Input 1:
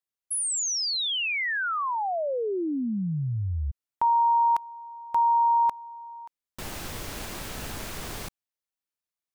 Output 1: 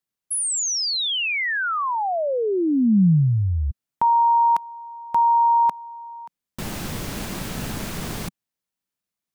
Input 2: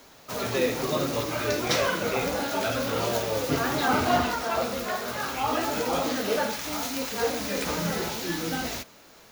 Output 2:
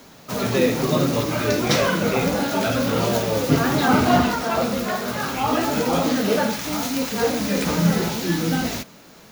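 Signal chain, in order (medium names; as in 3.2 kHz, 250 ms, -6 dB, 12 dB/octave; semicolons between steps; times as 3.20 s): peaking EQ 180 Hz +9.5 dB 1.3 oct; trim +4 dB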